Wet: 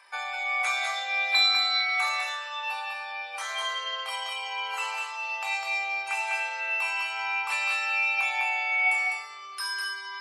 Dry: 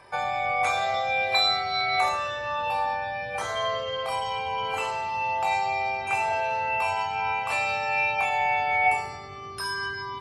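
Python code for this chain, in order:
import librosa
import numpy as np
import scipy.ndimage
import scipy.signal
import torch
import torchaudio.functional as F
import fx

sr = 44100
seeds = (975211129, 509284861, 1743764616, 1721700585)

y = scipy.signal.sosfilt(scipy.signal.butter(2, 1400.0, 'highpass', fs=sr, output='sos'), x)
y = y + 10.0 ** (-4.5 / 20.0) * np.pad(y, (int(202 * sr / 1000.0), 0))[:len(y)]
y = y * librosa.db_to_amplitude(1.0)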